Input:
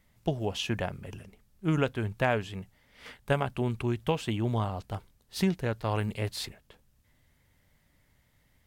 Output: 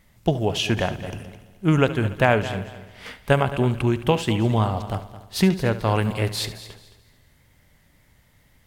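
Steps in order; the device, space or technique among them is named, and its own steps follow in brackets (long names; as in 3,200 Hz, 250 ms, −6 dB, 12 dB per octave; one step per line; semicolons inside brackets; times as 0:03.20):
multi-head tape echo (echo machine with several playback heads 72 ms, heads first and third, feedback 44%, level −15 dB; tape wow and flutter 17 cents)
level +8.5 dB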